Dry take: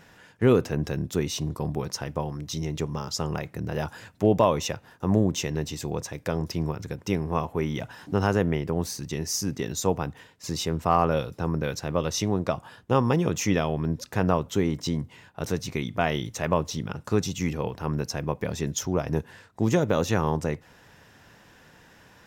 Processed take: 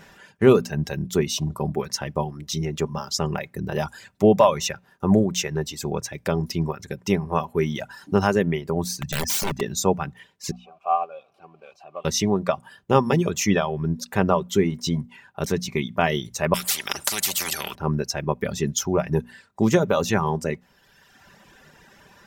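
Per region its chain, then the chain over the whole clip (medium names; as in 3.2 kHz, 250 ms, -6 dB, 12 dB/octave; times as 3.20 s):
9.01–9.61 s: comb 1.2 ms, depth 76% + integer overflow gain 22.5 dB
10.51–12.05 s: jump at every zero crossing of -29 dBFS + vowel filter a + upward expansion, over -38 dBFS
16.54–17.75 s: peaking EQ 9.6 kHz +9 dB 1.9 oct + spectrum-flattening compressor 10:1
whole clip: reverb removal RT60 1.3 s; hum notches 60/120/180/240 Hz; comb 5.1 ms, depth 40%; trim +4.5 dB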